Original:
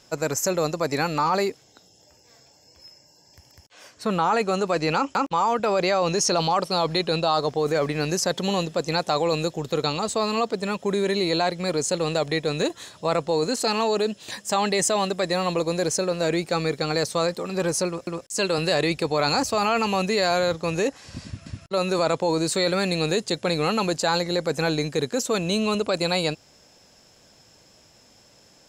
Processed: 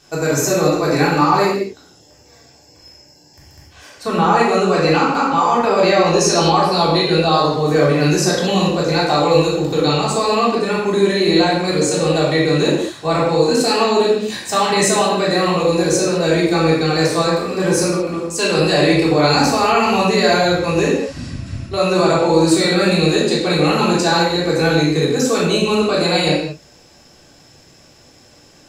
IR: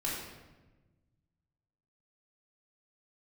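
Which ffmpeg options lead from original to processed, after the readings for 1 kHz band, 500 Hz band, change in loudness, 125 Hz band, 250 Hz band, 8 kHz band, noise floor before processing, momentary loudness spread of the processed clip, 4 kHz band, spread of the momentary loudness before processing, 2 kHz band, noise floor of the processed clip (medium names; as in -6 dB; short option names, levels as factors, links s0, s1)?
+8.0 dB, +8.5 dB, +8.5 dB, +10.5 dB, +10.5 dB, +6.0 dB, -56 dBFS, 5 LU, +7.5 dB, 5 LU, +8.5 dB, -48 dBFS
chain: -filter_complex "[1:a]atrim=start_sample=2205,afade=t=out:st=0.28:d=0.01,atrim=end_sample=12789[s0];[0:a][s0]afir=irnorm=-1:irlink=0,volume=1.5"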